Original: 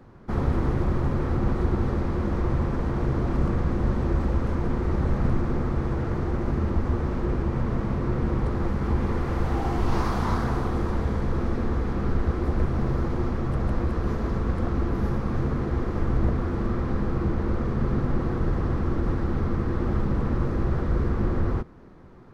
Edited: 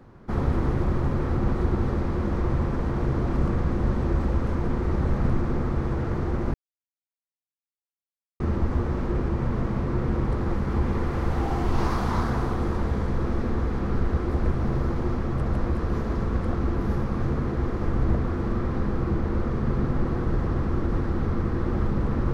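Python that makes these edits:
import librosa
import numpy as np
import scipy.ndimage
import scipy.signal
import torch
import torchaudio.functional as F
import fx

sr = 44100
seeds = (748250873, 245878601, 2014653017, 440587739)

y = fx.edit(x, sr, fx.insert_silence(at_s=6.54, length_s=1.86), tone=tone)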